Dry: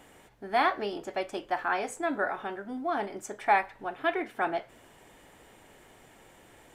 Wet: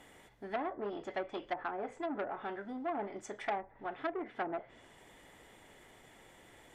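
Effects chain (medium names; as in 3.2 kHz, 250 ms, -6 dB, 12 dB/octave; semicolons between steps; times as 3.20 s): low-pass that closes with the level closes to 530 Hz, closed at -24.5 dBFS; small resonant body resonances 2/3.4 kHz, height 11 dB, ringing for 35 ms; transformer saturation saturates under 1.3 kHz; trim -3.5 dB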